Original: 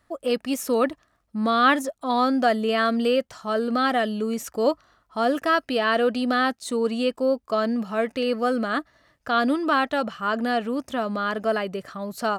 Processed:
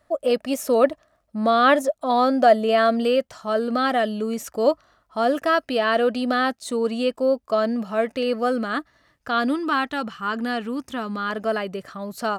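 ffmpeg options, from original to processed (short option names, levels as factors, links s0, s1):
-af "asetnsamples=n=441:p=0,asendcmd='3.03 equalizer g 4.5;8.58 equalizer g -3.5;9.59 equalizer g -11;11.3 equalizer g -0.5',equalizer=f=610:t=o:w=0.4:g=12.5"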